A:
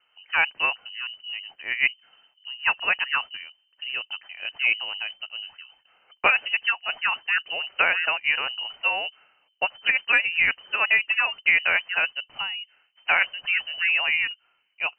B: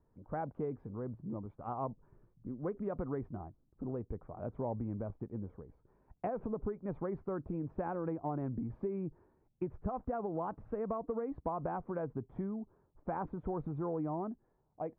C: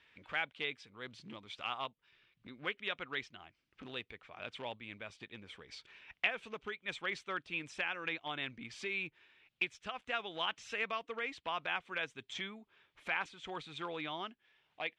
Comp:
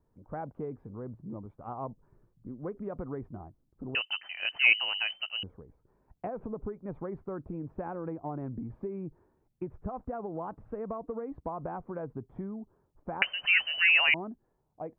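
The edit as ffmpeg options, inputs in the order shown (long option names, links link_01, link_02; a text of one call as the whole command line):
ffmpeg -i take0.wav -i take1.wav -filter_complex "[0:a]asplit=2[link_01][link_02];[1:a]asplit=3[link_03][link_04][link_05];[link_03]atrim=end=3.952[link_06];[link_01]atrim=start=3.948:end=5.432[link_07];[link_04]atrim=start=5.428:end=13.222[link_08];[link_02]atrim=start=13.218:end=14.142[link_09];[link_05]atrim=start=14.138[link_10];[link_06][link_07]acrossfade=duration=0.004:curve1=hsin:curve2=hsin[link_11];[link_11][link_08]acrossfade=duration=0.004:curve1=hsin:curve2=hsin[link_12];[link_12][link_09]acrossfade=duration=0.004:curve1=hsin:curve2=hsin[link_13];[link_13][link_10]acrossfade=duration=0.004:curve1=hsin:curve2=hsin" out.wav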